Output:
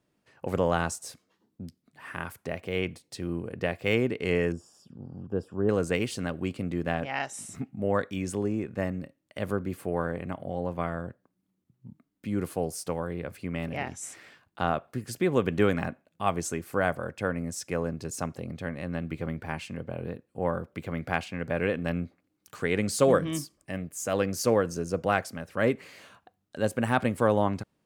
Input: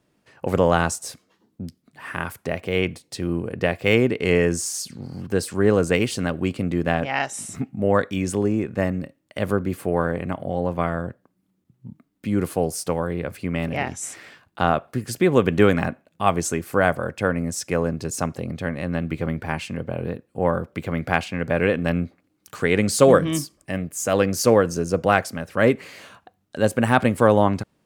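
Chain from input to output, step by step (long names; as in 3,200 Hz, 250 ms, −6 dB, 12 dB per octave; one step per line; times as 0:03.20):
0:04.52–0:05.69: moving average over 21 samples
level −7.5 dB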